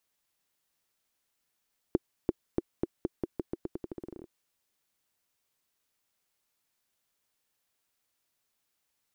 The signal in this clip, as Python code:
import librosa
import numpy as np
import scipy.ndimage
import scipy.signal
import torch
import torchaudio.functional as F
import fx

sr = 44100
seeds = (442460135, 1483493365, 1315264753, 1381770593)

y = fx.bouncing_ball(sr, first_gap_s=0.34, ratio=0.86, hz=348.0, decay_ms=30.0, level_db=-12.0)